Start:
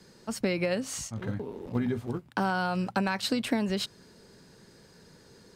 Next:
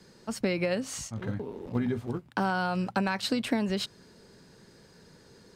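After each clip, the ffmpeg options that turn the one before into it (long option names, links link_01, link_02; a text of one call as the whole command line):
ffmpeg -i in.wav -af "highshelf=frequency=8600:gain=-4" out.wav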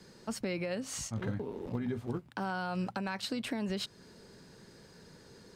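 ffmpeg -i in.wav -af "alimiter=level_in=1dB:limit=-24dB:level=0:latency=1:release=351,volume=-1dB" out.wav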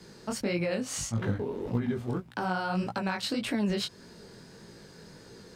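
ffmpeg -i in.wav -af "flanger=delay=17:depth=7.5:speed=1.7,volume=8dB" out.wav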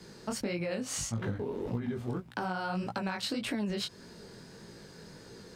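ffmpeg -i in.wav -af "acompressor=threshold=-30dB:ratio=6" out.wav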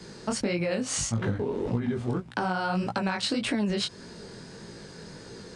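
ffmpeg -i in.wav -af "aresample=22050,aresample=44100,volume=6dB" out.wav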